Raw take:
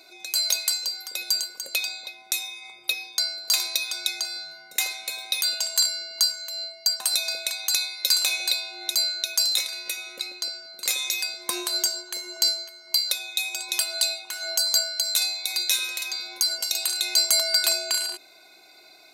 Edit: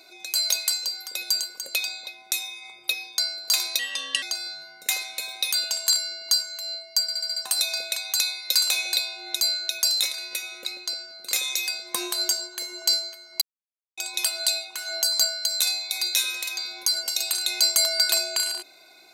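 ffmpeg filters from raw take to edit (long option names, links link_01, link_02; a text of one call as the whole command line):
ffmpeg -i in.wav -filter_complex "[0:a]asplit=10[link_01][link_02][link_03][link_04][link_05][link_06][link_07][link_08][link_09][link_10];[link_01]atrim=end=3.794[link_11];[link_02]atrim=start=3.79:end=4.12,asetpts=PTS-STARTPTS,asetrate=33516,aresample=44100[link_12];[link_03]atrim=start=4.116:end=6.982[link_13];[link_04]atrim=start=6.908:end=6.982[link_14];[link_05]atrim=start=6.908:end=6.982[link_15];[link_06]atrim=start=6.908:end=6.982[link_16];[link_07]atrim=start=6.908:end=6.982[link_17];[link_08]atrim=start=6.908:end=12.96,asetpts=PTS-STARTPTS,afade=type=out:start_time=6.048:duration=0.004:curve=hsin[link_18];[link_09]atrim=start=12.96:end=13.52,asetpts=PTS-STARTPTS,volume=0[link_19];[link_10]atrim=start=13.52,asetpts=PTS-STARTPTS,afade=type=in:duration=0.004:curve=hsin[link_20];[link_11][link_12]acrossfade=duration=0.004:curve1=hsin:curve2=hsin[link_21];[link_21][link_13]acrossfade=duration=0.004:curve1=hsin:curve2=hsin[link_22];[link_22][link_14]acrossfade=duration=0.004:curve1=hsin:curve2=hsin[link_23];[link_23][link_15]acrossfade=duration=0.004:curve1=hsin:curve2=hsin[link_24];[link_24][link_16]acrossfade=duration=0.004:curve1=hsin:curve2=hsin[link_25];[link_25][link_17]acrossfade=duration=0.004:curve1=hsin:curve2=hsin[link_26];[link_18][link_19][link_20]concat=n=3:v=0:a=1[link_27];[link_26][link_27]acrossfade=duration=0.004:curve1=hsin:curve2=hsin" out.wav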